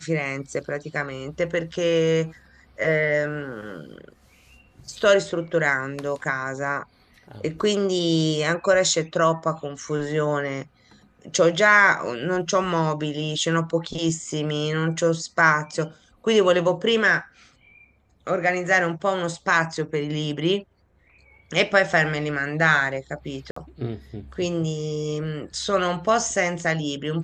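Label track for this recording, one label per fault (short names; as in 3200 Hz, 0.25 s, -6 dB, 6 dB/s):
23.510000	23.560000	gap 54 ms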